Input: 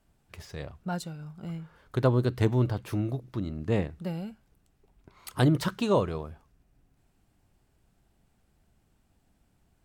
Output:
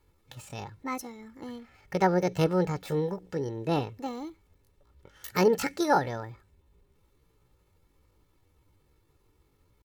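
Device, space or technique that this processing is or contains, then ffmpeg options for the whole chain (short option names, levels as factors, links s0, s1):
chipmunk voice: -af "aecho=1:1:3.3:0.52,asetrate=64194,aresample=44100,atempo=0.686977"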